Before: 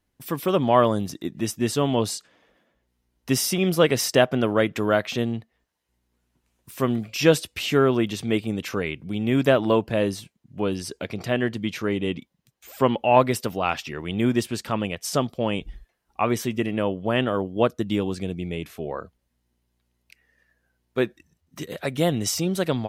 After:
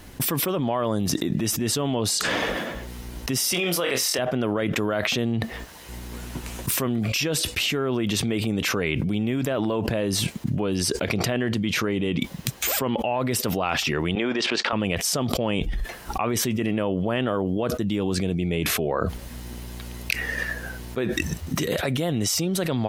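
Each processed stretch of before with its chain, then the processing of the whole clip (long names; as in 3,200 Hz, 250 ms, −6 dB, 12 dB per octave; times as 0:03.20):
0:03.52–0:04.19: high-pass filter 790 Hz 6 dB per octave + flutter between parallel walls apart 4 metres, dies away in 0.2 s
0:14.15–0:14.73: output level in coarse steps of 14 dB + band-pass filter 490–5,600 Hz + high-frequency loss of the air 120 metres
whole clip: automatic gain control gain up to 6 dB; brickwall limiter −9 dBFS; envelope flattener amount 100%; level −9 dB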